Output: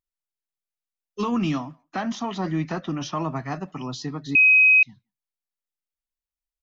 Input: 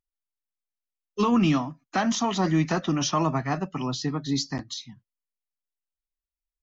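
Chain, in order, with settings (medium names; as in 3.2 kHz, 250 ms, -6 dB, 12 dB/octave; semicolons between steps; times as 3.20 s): 1.82–3.36 s: distance through air 120 m; speakerphone echo 170 ms, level -30 dB; 4.35–4.83 s: bleep 2.53 kHz -8.5 dBFS; trim -3 dB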